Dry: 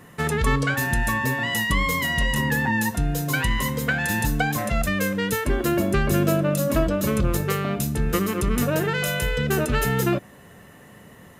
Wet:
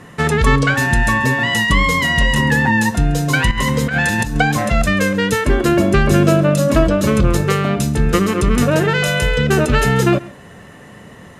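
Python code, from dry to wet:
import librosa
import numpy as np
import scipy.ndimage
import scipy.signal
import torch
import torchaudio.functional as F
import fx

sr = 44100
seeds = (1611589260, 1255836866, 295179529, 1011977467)

y = scipy.signal.sosfilt(scipy.signal.butter(2, 8100.0, 'lowpass', fs=sr, output='sos'), x)
y = fx.over_compress(y, sr, threshold_db=-25.0, ratio=-0.5, at=(3.51, 4.37))
y = y + 10.0 ** (-21.0 / 20.0) * np.pad(y, (int(136 * sr / 1000.0), 0))[:len(y)]
y = y * librosa.db_to_amplitude(8.0)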